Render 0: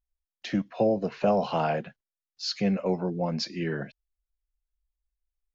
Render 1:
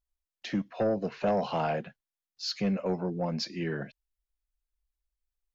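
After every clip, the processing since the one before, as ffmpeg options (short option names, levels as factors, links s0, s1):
-af "aeval=exprs='0.266*sin(PI/2*1.41*val(0)/0.266)':c=same,volume=0.355"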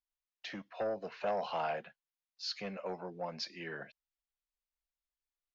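-filter_complex "[0:a]acrossover=split=510 6200:gain=0.2 1 0.2[s0][s1][s2];[s0][s1][s2]amix=inputs=3:normalize=0,volume=0.668"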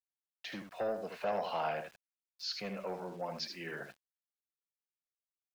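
-af "aecho=1:1:77:0.447,aeval=exprs='val(0)*gte(abs(val(0)),0.00168)':c=same"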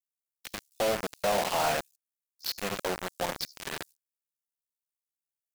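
-filter_complex "[0:a]acrossover=split=6200[s0][s1];[s0]acrusher=bits=5:mix=0:aa=0.000001[s2];[s1]aeval=exprs='val(0)*sin(2*PI*35*n/s)':c=same[s3];[s2][s3]amix=inputs=2:normalize=0,volume=2.11"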